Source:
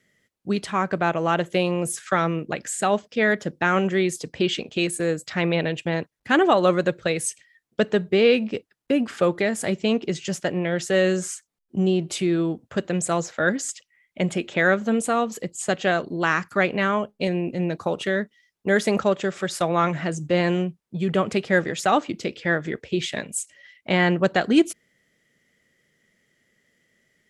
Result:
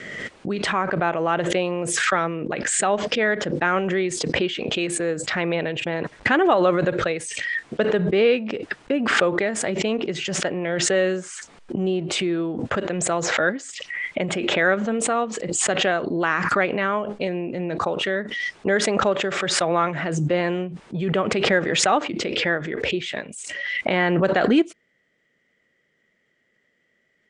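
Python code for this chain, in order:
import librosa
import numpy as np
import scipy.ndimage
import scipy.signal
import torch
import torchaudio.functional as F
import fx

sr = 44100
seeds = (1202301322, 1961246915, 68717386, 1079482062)

y = scipy.signal.sosfilt(scipy.signal.butter(12, 9500.0, 'lowpass', fs=sr, output='sos'), x)
y = fx.bass_treble(y, sr, bass_db=-7, treble_db=-12)
y = fx.pre_swell(y, sr, db_per_s=29.0)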